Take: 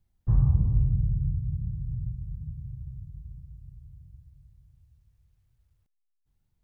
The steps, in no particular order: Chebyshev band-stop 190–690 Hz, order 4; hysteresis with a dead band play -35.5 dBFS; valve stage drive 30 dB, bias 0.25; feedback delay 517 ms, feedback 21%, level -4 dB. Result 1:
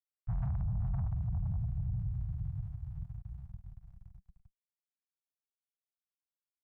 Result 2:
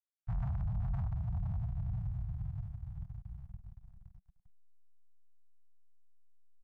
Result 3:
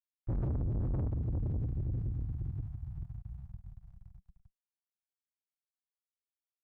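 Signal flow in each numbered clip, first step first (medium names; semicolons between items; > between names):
feedback delay > hysteresis with a dead band > valve stage > Chebyshev band-stop; feedback delay > valve stage > hysteresis with a dead band > Chebyshev band-stop; feedback delay > hysteresis with a dead band > Chebyshev band-stop > valve stage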